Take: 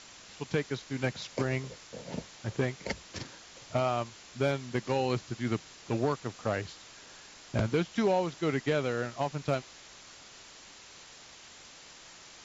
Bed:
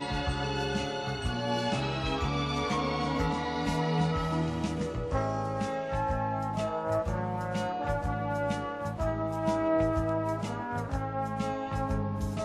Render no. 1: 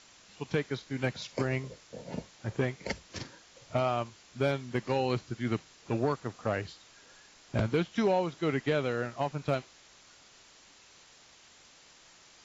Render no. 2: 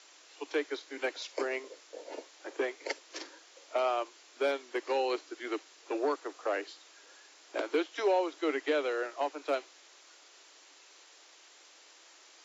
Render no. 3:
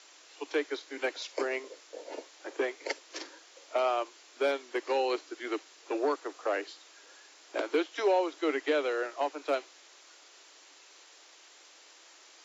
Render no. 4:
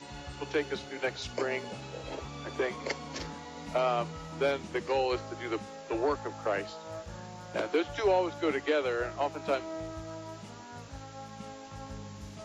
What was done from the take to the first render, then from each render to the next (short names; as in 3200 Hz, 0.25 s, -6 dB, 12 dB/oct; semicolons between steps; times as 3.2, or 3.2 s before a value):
noise print and reduce 6 dB
steep high-pass 290 Hz 96 dB/oct
gain +1.5 dB
add bed -12.5 dB